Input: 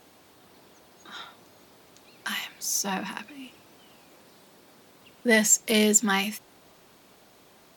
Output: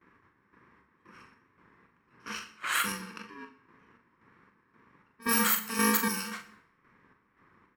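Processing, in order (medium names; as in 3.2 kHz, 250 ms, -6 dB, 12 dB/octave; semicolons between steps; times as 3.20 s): bit-reversed sample order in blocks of 64 samples; gate with hold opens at -46 dBFS; high-order bell 1.5 kHz +11 dB 1.3 oct; level-controlled noise filter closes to 1.3 kHz, open at -20.5 dBFS; peak limiter -13 dBFS, peak gain reduction 6.5 dB; square tremolo 1.9 Hz, depth 60%, duty 55%; doubling 42 ms -7.5 dB; pre-echo 65 ms -23.5 dB; reverberation RT60 0.70 s, pre-delay 23 ms, DRR 10.5 dB; wow and flutter 26 cents; trim -3 dB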